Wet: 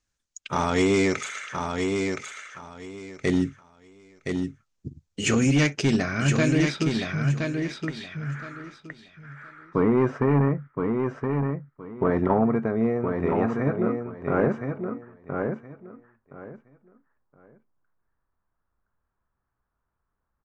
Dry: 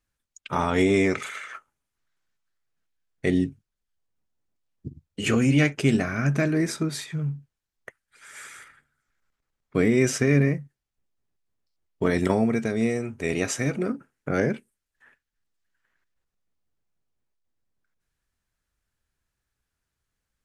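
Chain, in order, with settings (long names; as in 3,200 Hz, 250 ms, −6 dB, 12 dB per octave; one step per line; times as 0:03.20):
hard clipping −15 dBFS, distortion −17 dB
low-pass filter sweep 6,600 Hz → 1,100 Hz, 0:05.55–0:08.86
repeating echo 1,019 ms, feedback 21%, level −5 dB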